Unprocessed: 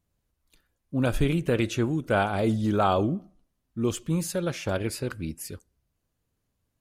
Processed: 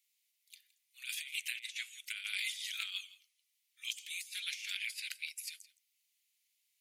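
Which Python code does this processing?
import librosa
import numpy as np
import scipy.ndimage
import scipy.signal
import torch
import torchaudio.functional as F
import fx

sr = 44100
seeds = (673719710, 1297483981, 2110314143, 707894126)

y = scipy.signal.sosfilt(scipy.signal.cheby1(5, 1.0, 2100.0, 'highpass', fs=sr, output='sos'), x)
y = fx.over_compress(y, sr, threshold_db=-44.0, ratio=-0.5)
y = y + 10.0 ** (-19.5 / 20.0) * np.pad(y, (int(166 * sr / 1000.0), 0))[:len(y)]
y = y * librosa.db_to_amplitude(4.0)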